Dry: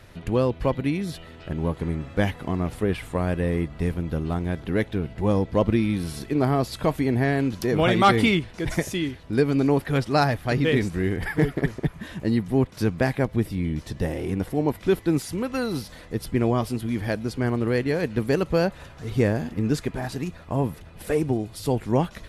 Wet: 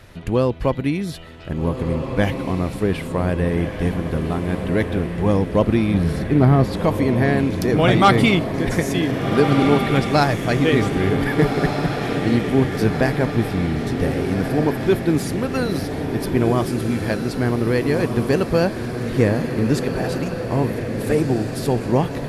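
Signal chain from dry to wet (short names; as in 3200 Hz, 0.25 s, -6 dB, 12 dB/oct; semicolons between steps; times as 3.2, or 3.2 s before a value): 5.94–6.77 tone controls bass +8 dB, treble -8 dB; diffused feedback echo 1.598 s, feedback 59%, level -6 dB; gain +3.5 dB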